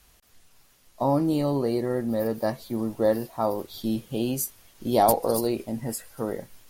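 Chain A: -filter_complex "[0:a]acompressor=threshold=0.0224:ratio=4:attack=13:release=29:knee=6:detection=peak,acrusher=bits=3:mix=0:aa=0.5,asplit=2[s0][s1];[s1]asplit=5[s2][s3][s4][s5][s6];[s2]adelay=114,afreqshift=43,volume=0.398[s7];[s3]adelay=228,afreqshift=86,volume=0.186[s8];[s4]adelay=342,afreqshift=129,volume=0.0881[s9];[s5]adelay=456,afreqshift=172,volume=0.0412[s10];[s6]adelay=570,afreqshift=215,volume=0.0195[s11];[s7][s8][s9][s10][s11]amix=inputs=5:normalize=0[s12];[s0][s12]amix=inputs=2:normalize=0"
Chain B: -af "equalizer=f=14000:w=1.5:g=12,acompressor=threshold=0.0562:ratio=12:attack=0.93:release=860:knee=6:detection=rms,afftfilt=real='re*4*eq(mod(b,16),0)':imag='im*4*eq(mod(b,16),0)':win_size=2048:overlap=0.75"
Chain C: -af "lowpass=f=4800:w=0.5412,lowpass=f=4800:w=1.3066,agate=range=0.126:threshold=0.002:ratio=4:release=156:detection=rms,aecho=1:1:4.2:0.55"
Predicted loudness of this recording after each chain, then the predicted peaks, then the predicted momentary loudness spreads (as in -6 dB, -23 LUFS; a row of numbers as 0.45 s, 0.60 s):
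-38.5 LUFS, -38.5 LUFS, -25.5 LUFS; -15.5 dBFS, -22.5 dBFS, -7.0 dBFS; 11 LU, 15 LU, 11 LU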